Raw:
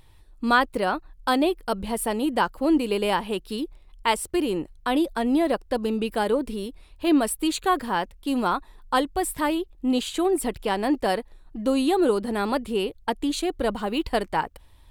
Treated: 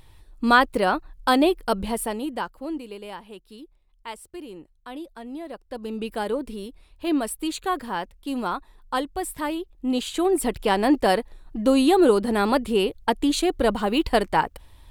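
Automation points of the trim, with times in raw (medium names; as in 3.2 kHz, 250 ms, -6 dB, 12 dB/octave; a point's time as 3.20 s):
1.82 s +3 dB
2.22 s -4.5 dB
3.00 s -14 dB
5.49 s -14 dB
6.04 s -3.5 dB
9.60 s -3.5 dB
10.69 s +4 dB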